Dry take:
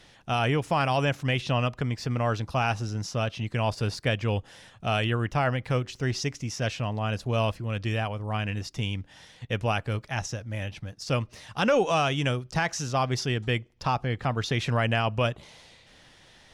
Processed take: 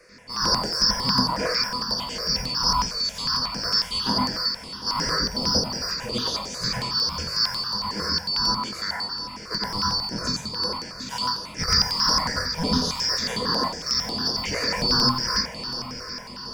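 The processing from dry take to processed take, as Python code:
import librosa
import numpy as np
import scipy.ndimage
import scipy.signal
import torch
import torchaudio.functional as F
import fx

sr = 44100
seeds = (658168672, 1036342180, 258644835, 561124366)

p1 = fx.band_shuffle(x, sr, order='2341')
p2 = fx.peak_eq(p1, sr, hz=4100.0, db=-6.5, octaves=0.41)
p3 = fx.small_body(p2, sr, hz=(200.0, 490.0, 970.0, 2400.0), ring_ms=45, db=9)
p4 = 10.0 ** (-30.5 / 20.0) * np.tanh(p3 / 10.0 ** (-30.5 / 20.0))
p5 = p3 + (p4 * 10.0 ** (-8.0 / 20.0))
p6 = fx.doubler(p5, sr, ms=24.0, db=-5.5)
p7 = p6 + fx.echo_diffused(p6, sr, ms=865, feedback_pct=48, wet_db=-11.5, dry=0)
p8 = fx.rev_plate(p7, sr, seeds[0], rt60_s=0.5, hf_ratio=0.85, predelay_ms=80, drr_db=-3.5)
y = fx.phaser_held(p8, sr, hz=11.0, low_hz=880.0, high_hz=7700.0)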